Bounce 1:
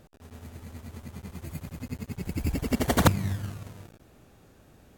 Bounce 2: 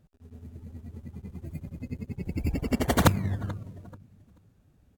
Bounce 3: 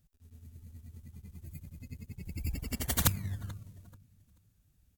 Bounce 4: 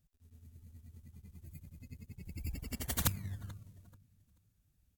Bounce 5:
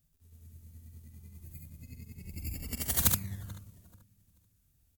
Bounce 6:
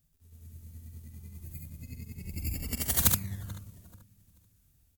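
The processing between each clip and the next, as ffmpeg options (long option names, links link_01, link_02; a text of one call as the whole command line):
ffmpeg -i in.wav -af "aecho=1:1:435|870|1305:0.119|0.0452|0.0172,afftdn=noise_reduction=15:noise_floor=-43" out.wav
ffmpeg -i in.wav -af "equalizer=frequency=480:width=0.32:gain=-14.5,crystalizer=i=1:c=0,volume=-2dB" out.wav
ffmpeg -i in.wav -af "aeval=exprs='0.668*(cos(1*acos(clip(val(0)/0.668,-1,1)))-cos(1*PI/2))+0.015*(cos(8*acos(clip(val(0)/0.668,-1,1)))-cos(8*PI/2))':channel_layout=same,volume=-5dB" out.wav
ffmpeg -i in.wav -af "highshelf=frequency=6000:gain=8.5,aecho=1:1:46|71:0.355|0.708" out.wav
ffmpeg -i in.wav -af "dynaudnorm=framelen=150:gausssize=5:maxgain=3.5dB,volume=1dB" out.wav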